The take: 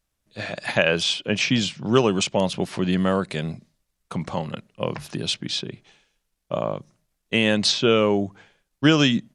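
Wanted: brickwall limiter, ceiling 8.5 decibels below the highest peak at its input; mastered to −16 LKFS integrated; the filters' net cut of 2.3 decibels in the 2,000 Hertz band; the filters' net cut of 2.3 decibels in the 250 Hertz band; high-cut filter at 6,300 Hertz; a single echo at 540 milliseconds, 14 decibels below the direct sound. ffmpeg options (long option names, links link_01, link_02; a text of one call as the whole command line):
ffmpeg -i in.wav -af "lowpass=6300,equalizer=frequency=250:width_type=o:gain=-3,equalizer=frequency=2000:width_type=o:gain=-3,alimiter=limit=-13.5dB:level=0:latency=1,aecho=1:1:540:0.2,volume=11dB" out.wav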